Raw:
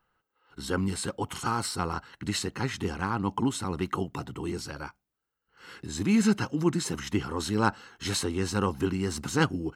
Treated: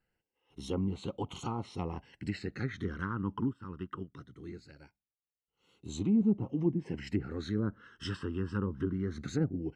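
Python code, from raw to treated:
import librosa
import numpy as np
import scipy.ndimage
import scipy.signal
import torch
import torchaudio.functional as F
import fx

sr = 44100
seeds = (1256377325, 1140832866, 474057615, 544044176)

y = fx.env_lowpass_down(x, sr, base_hz=590.0, full_db=-21.5)
y = fx.phaser_stages(y, sr, stages=12, low_hz=710.0, high_hz=1700.0, hz=0.21, feedback_pct=5)
y = fx.upward_expand(y, sr, threshold_db=-46.0, expansion=1.5, at=(3.52, 5.85), fade=0.02)
y = y * 10.0 ** (-3.5 / 20.0)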